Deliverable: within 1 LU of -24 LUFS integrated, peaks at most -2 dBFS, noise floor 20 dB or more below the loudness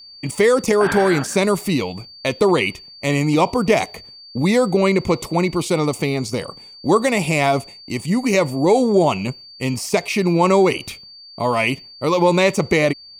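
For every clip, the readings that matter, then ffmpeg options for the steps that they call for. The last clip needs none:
steady tone 4600 Hz; tone level -39 dBFS; loudness -18.5 LUFS; peak -2.5 dBFS; loudness target -24.0 LUFS
-> -af "bandreject=f=4.6k:w=30"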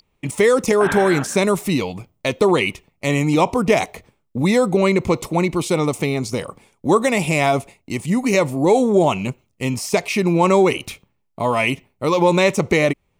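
steady tone none; loudness -18.5 LUFS; peak -2.5 dBFS; loudness target -24.0 LUFS
-> -af "volume=-5.5dB"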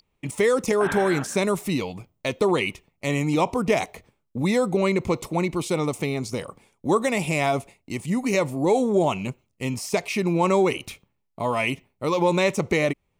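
loudness -24.0 LUFS; peak -8.0 dBFS; noise floor -74 dBFS

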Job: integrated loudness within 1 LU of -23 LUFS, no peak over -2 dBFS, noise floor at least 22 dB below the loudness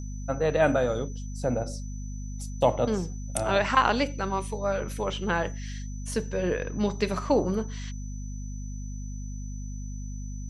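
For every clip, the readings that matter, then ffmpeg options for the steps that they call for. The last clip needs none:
hum 50 Hz; harmonics up to 250 Hz; hum level -33 dBFS; steady tone 6000 Hz; tone level -49 dBFS; loudness -29.0 LUFS; peak -6.0 dBFS; loudness target -23.0 LUFS
-> -af "bandreject=f=50:t=h:w=4,bandreject=f=100:t=h:w=4,bandreject=f=150:t=h:w=4,bandreject=f=200:t=h:w=4,bandreject=f=250:t=h:w=4"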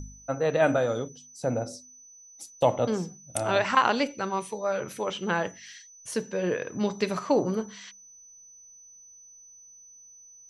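hum none; steady tone 6000 Hz; tone level -49 dBFS
-> -af "bandreject=f=6k:w=30"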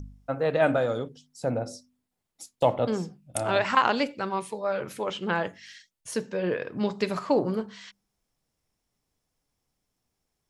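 steady tone none; loudness -28.0 LUFS; peak -6.0 dBFS; loudness target -23.0 LUFS
-> -af "volume=5dB,alimiter=limit=-2dB:level=0:latency=1"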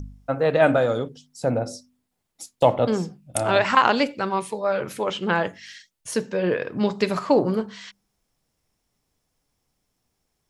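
loudness -23.0 LUFS; peak -2.0 dBFS; noise floor -76 dBFS

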